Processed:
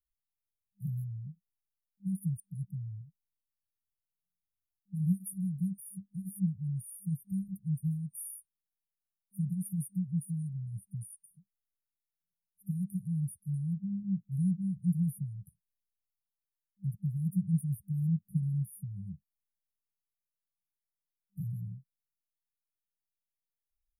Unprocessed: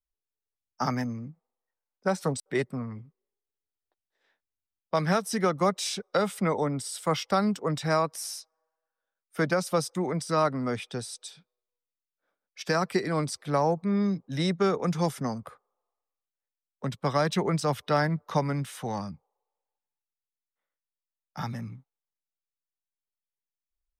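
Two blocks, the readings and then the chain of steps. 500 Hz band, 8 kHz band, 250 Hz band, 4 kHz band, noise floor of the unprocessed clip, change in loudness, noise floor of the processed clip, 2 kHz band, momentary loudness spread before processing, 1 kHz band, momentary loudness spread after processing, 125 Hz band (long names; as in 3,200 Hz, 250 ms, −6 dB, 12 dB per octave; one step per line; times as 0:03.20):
below −40 dB, −9.5 dB, −4.0 dB, below −40 dB, below −85 dBFS, −7.0 dB, below −85 dBFS, below −40 dB, 13 LU, below −40 dB, 12 LU, 0.0 dB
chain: brick-wall band-stop 200–9,300 Hz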